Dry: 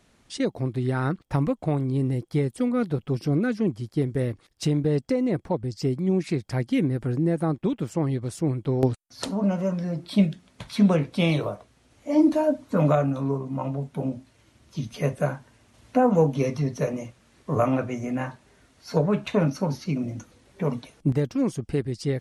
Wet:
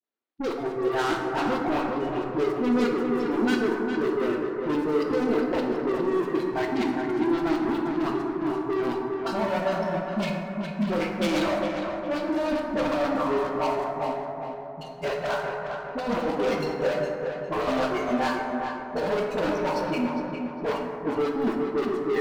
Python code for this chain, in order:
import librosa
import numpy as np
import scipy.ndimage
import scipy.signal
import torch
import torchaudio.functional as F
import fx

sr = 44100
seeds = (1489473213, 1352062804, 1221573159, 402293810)

p1 = fx.dead_time(x, sr, dead_ms=0.16)
p2 = scipy.signal.sosfilt(scipy.signal.cheby1(3, 1.0, [300.0, 4500.0], 'bandpass', fs=sr, output='sos'), p1)
p3 = fx.noise_reduce_blind(p2, sr, reduce_db=26)
p4 = fx.over_compress(p3, sr, threshold_db=-27.0, ratio=-0.5)
p5 = fx.leveller(p4, sr, passes=3)
p6 = fx.dispersion(p5, sr, late='highs', ms=42.0, hz=600.0)
p7 = 10.0 ** (-24.5 / 20.0) * np.tanh(p6 / 10.0 ** (-24.5 / 20.0))
p8 = p7 + fx.echo_filtered(p7, sr, ms=407, feedback_pct=42, hz=2900.0, wet_db=-6.0, dry=0)
y = fx.rev_plate(p8, sr, seeds[0], rt60_s=2.7, hf_ratio=0.3, predelay_ms=0, drr_db=1.0)